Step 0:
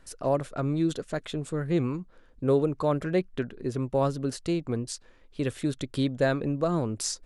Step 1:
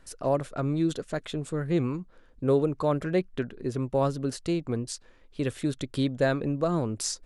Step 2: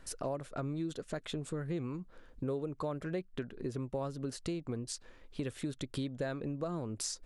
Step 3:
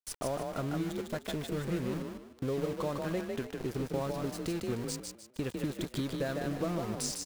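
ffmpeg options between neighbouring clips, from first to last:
-af anull
-af "acompressor=threshold=-37dB:ratio=4,volume=1dB"
-filter_complex "[0:a]aeval=exprs='val(0)+0.00112*(sin(2*PI*50*n/s)+sin(2*PI*2*50*n/s)/2+sin(2*PI*3*50*n/s)/3+sin(2*PI*4*50*n/s)/4+sin(2*PI*5*50*n/s)/5)':c=same,aeval=exprs='val(0)*gte(abs(val(0)),0.00794)':c=same,asplit=5[a][b][c][d][e];[b]adelay=152,afreqshift=34,volume=-4dB[f];[c]adelay=304,afreqshift=68,volume=-13.9dB[g];[d]adelay=456,afreqshift=102,volume=-23.8dB[h];[e]adelay=608,afreqshift=136,volume=-33.7dB[i];[a][f][g][h][i]amix=inputs=5:normalize=0,volume=2dB"

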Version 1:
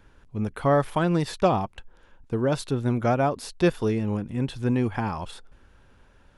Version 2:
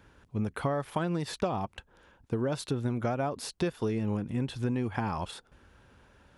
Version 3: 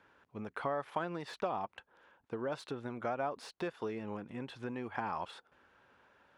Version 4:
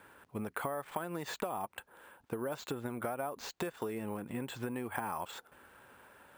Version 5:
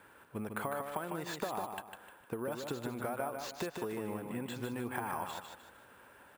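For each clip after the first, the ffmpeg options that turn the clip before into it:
-af "highpass=56,acompressor=threshold=-26dB:ratio=12"
-filter_complex "[0:a]bandpass=f=1.2k:t=q:w=0.55:csg=0,acrossover=split=2000[a][b];[b]asoftclip=type=tanh:threshold=-39.5dB[c];[a][c]amix=inputs=2:normalize=0,volume=-2dB"
-af "acrusher=samples=4:mix=1:aa=0.000001,acompressor=threshold=-42dB:ratio=5,volume=7.5dB"
-af "aecho=1:1:152|304|456|608:0.531|0.186|0.065|0.0228,volume=-1dB"

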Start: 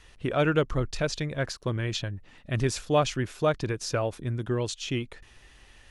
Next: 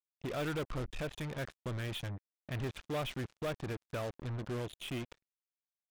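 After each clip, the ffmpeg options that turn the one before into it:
-af "aresample=8000,asoftclip=type=tanh:threshold=-26dB,aresample=44100,acrusher=bits=5:mix=0:aa=0.5,volume=-6dB"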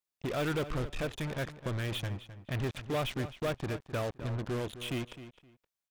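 -filter_complex "[0:a]asplit=2[a][b];[b]adelay=260,lowpass=f=4.8k:p=1,volume=-13dB,asplit=2[c][d];[d]adelay=260,lowpass=f=4.8k:p=1,volume=0.21[e];[a][c][e]amix=inputs=3:normalize=0,volume=4dB"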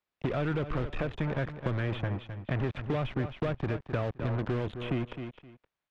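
-filter_complex "[0:a]acrossover=split=200|2000[a][b][c];[a]acompressor=threshold=-41dB:ratio=4[d];[b]acompressor=threshold=-41dB:ratio=4[e];[c]acompressor=threshold=-53dB:ratio=4[f];[d][e][f]amix=inputs=3:normalize=0,lowpass=2.6k,volume=9dB"

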